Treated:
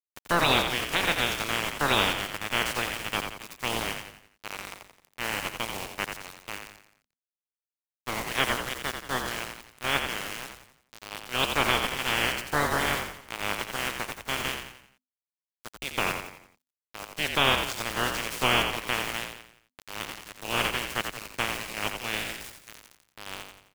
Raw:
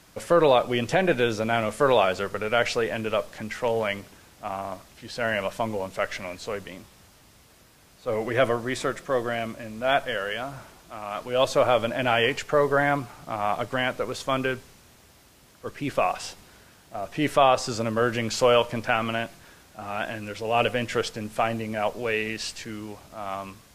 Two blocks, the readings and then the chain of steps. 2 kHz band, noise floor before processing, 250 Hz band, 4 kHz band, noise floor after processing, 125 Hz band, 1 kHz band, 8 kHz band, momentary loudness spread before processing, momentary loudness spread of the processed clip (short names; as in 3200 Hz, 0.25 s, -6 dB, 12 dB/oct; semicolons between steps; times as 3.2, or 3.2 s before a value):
+0.5 dB, -55 dBFS, -6.5 dB, +4.0 dB, under -85 dBFS, -5.0 dB, -4.0 dB, +3.5 dB, 16 LU, 17 LU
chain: spectral limiter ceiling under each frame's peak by 29 dB; sample gate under -26 dBFS; frequency-shifting echo 87 ms, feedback 45%, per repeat -51 Hz, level -6 dB; gain -4.5 dB